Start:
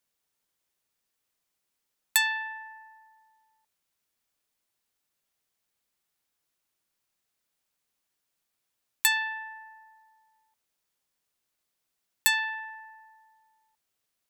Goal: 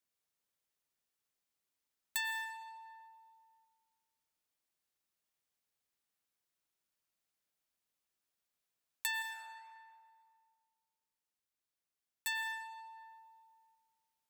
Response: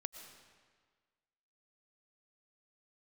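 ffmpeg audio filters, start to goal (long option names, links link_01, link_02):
-filter_complex "[0:a]alimiter=limit=-14dB:level=0:latency=1:release=207,afreqshift=16,asettb=1/sr,asplit=3[link_01][link_02][link_03];[link_01]atrim=end=9.224[link_04];[link_02]atrim=start=9.22:end=12.27,asetpts=PTS-STARTPTS,afade=type=in:duration=0.004:curve=qsin,afade=type=out:start_time=3.046:duration=0.004:curve=qsin,flanger=delay=8.8:depth=6.1:regen=-86:speed=1.7:shape=sinusoidal[link_05];[link_03]atrim=start=12.266[link_06];[link_04][link_05]acrossfade=duration=0.004:curve1=hsin:curve2=qsin[link_07];[link_07][link_06]acrossfade=duration=0.004:curve1=qsin:curve2=hsin[link_08];[1:a]atrim=start_sample=2205[link_09];[link_08][link_09]afir=irnorm=-1:irlink=0,volume=-4.5dB"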